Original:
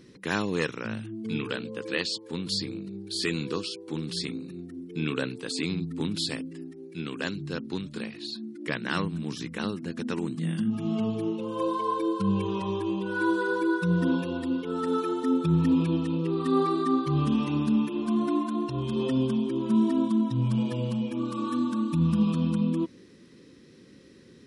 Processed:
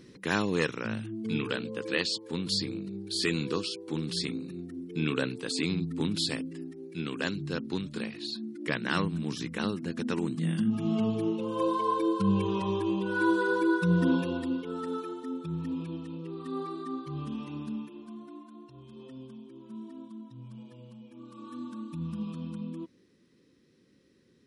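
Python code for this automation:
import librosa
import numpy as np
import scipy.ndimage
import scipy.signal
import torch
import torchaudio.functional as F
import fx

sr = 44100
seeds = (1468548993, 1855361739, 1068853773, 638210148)

y = fx.gain(x, sr, db=fx.line((14.27, 0.0), (15.3, -11.5), (17.7, -11.5), (18.26, -20.0), (21.03, -20.0), (21.65, -12.0)))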